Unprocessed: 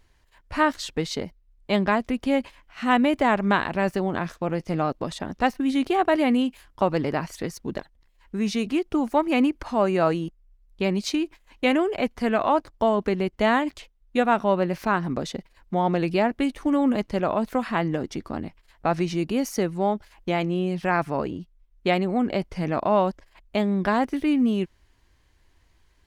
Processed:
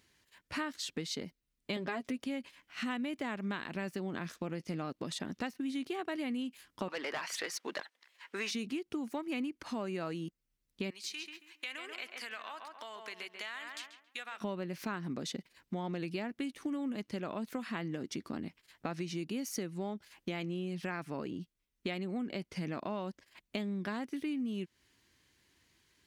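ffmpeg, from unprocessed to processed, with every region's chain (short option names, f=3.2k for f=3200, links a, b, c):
-filter_complex "[0:a]asettb=1/sr,asplit=3[a][b][c];[a]atrim=end=1.764[d];[b]atrim=start=1.76:end=2.24,asetpts=PTS-STARTPTS,afade=t=in:d=0.004:c=qsin,afade=t=out:st=0.476:d=0.004:c=qsin,equalizer=f=590:w=1.5:g=5.5,aecho=1:1:7.3:0.62,atrim=end_sample=21168,acompressor=mode=upward:threshold=-22dB:ratio=2.5:attack=3.2:release=140:knee=2.83:detection=peak[e];[c]atrim=start=2.236[f];[d][e]acrossfade=d=0.004:c1=hsin:c2=qsin[g];[g][f]acrossfade=d=0.004:c1=qsin:c2=hsin,asettb=1/sr,asplit=3[h][i][j];[h]atrim=end=6.884[k];[i]atrim=start=6.88:end=8.51,asetpts=PTS-STARTPTS,afade=t=in:d=0.004:c=qsin,afade=t=out:st=1.626:d=0.004:c=qsin,highpass=640,asplit=2[l][m];[m]highpass=f=720:p=1,volume=21dB,asoftclip=type=tanh:threshold=-12.5dB[n];[l][n]amix=inputs=2:normalize=0,lowpass=f=2k:p=1,volume=-6dB[o];[j]atrim=start=8.506[p];[k][o]acrossfade=d=0.004:c1=hsin:c2=qsin[q];[q][p]acrossfade=d=0.004:c1=qsin:c2=hsin,asettb=1/sr,asplit=3[r][s][t];[r]atrim=end=10.904[u];[s]atrim=start=10.9:end=14.41,asetpts=PTS-STARTPTS,afade=t=in:d=0.004:c=qsin,afade=t=out:st=3.506:d=0.004:c=qsin,highpass=1.2k,asplit=2[v][w];[w]adelay=137,lowpass=f=2.2k:p=1,volume=-8.5dB,asplit=2[x][y];[y]adelay=137,lowpass=f=2.2k:p=1,volume=0.32,asplit=2[z][aa];[aa]adelay=137,lowpass=f=2.2k:p=1,volume=0.32,asplit=2[ab][ac];[ac]adelay=137,lowpass=f=2.2k:p=1,volume=0.32[ad];[v][x][z][ab][ad]amix=inputs=5:normalize=0,atrim=end_sample=154791,acompressor=threshold=-37dB:ratio=3:attack=3.2:release=140:knee=1:detection=peak[ae];[t]atrim=start=14.406[af];[u][ae]acrossfade=d=0.004:c1=hsin:c2=qsin[ag];[ag][af]acrossfade=d=0.004:c1=qsin:c2=hsin,highpass=180,equalizer=f=750:t=o:w=1.9:g=-11,acompressor=threshold=-37dB:ratio=5,volume=1.5dB"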